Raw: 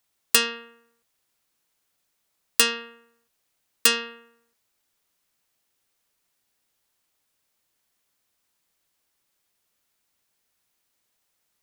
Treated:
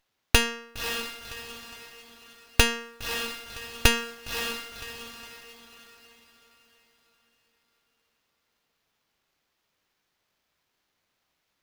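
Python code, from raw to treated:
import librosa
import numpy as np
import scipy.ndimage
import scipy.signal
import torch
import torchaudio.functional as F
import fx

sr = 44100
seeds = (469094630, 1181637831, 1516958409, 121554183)

y = fx.echo_diffused(x, sr, ms=557, feedback_pct=42, wet_db=-7)
y = fx.running_max(y, sr, window=5)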